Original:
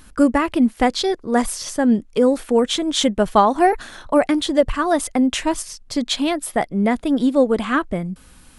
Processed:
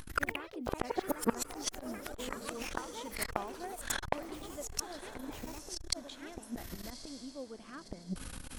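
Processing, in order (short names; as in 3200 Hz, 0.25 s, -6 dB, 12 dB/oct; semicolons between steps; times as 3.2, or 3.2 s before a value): flipped gate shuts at -17 dBFS, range -34 dB; diffused feedback echo 1.12 s, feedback 43%, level -14.5 dB; echoes that change speed 88 ms, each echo +4 st, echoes 3; core saturation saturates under 970 Hz; gain +5 dB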